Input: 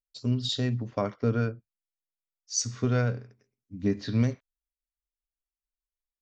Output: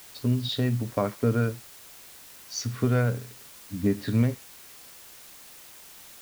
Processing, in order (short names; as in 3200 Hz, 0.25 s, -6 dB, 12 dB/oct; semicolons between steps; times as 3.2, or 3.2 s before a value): LPF 3200 Hz 12 dB/oct; in parallel at +1 dB: compressor, threshold -35 dBFS, peak gain reduction 15 dB; on the sum: requantised 8-bit, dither triangular